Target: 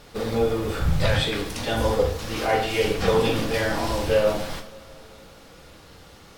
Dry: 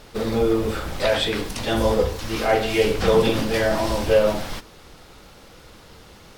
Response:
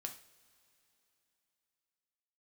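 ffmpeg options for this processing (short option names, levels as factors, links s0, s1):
-filter_complex "[0:a]asettb=1/sr,asplit=3[s0][s1][s2];[s0]atrim=end=0.804[s3];[s1]atrim=start=0.8:end=1.21,asetpts=PTS-STARTPTS,afade=t=in:d=0.004:c=qsin,afade=t=out:st=0.406:d=0.004:c=qsin,lowshelf=f=210:t=q:w=1.5:g=11.5[s4];[s2]atrim=start=1.206[s5];[s3][s4]acrossfade=d=0.004:c1=hsin:c2=qsin[s6];[s6][s5]acrossfade=d=0.004:c1=qsin:c2=hsin[s7];[1:a]atrim=start_sample=2205[s8];[s7][s8]afir=irnorm=-1:irlink=0,volume=1.19"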